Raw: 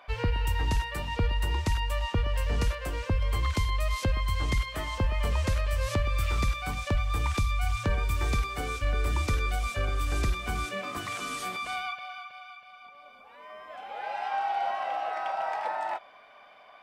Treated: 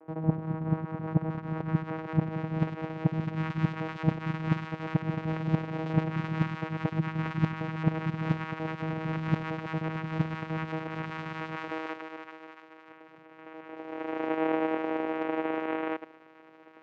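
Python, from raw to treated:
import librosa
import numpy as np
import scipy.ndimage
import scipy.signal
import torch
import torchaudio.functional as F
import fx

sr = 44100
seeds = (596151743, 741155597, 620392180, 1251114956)

y = fx.local_reverse(x, sr, ms=76.0)
y = fx.vocoder(y, sr, bands=4, carrier='saw', carrier_hz=159.0)
y = fx.filter_sweep_lowpass(y, sr, from_hz=920.0, to_hz=3000.0, start_s=0.61, end_s=3.08, q=0.78)
y = y * 10.0 ** (3.0 / 20.0)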